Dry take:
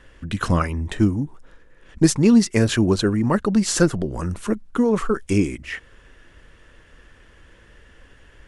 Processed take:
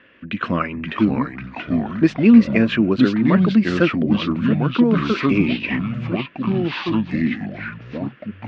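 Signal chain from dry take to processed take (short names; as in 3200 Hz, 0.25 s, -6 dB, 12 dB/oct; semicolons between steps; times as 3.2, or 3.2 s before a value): echoes that change speed 0.443 s, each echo -4 st, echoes 3; speaker cabinet 210–3200 Hz, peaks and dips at 230 Hz +5 dB, 430 Hz -4 dB, 840 Hz -9 dB, 2500 Hz +6 dB; gain +2 dB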